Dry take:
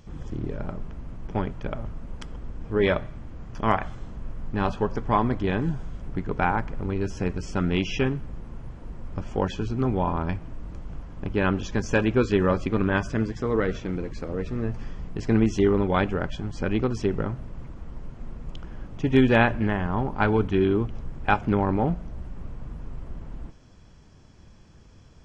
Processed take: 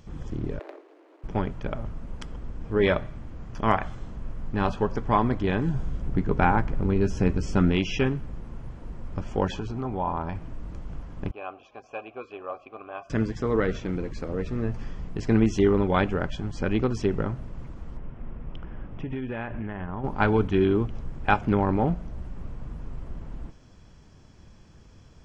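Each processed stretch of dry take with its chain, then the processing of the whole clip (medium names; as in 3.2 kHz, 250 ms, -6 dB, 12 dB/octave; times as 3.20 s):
0.59–1.24 s: median filter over 41 samples + steep high-pass 300 Hz 96 dB/octave + treble shelf 6.2 kHz -11.5 dB
5.74–7.72 s: bass shelf 450 Hz +5.5 dB + doubling 15 ms -12 dB
9.49–10.36 s: compression 3:1, threshold -29 dBFS + peaking EQ 840 Hz +8 dB 1.1 oct
11.31–13.10 s: vowel filter a + peaking EQ 190 Hz -11.5 dB 0.28 oct
17.97–20.04 s: Savitzky-Golay filter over 25 samples + compression 10:1, threshold -28 dBFS
whole clip: none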